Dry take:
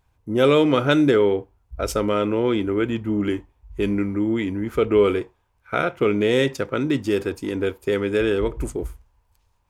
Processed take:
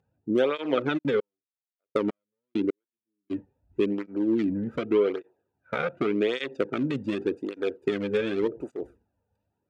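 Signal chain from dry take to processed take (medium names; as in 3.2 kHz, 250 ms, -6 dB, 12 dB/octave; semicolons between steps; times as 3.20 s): local Wiener filter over 41 samples; frequency weighting A; low-pass that closes with the level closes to 2 kHz, closed at -13.5 dBFS; bass shelf 380 Hz +10.5 dB; compression 4:1, threshold -24 dBFS, peak gain reduction 10.5 dB; 0.97–3.30 s: trance gate "...x...x.." 100 bpm -60 dB; loudness maximiser +12.5 dB; cancelling through-zero flanger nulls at 0.86 Hz, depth 3.2 ms; trim -8 dB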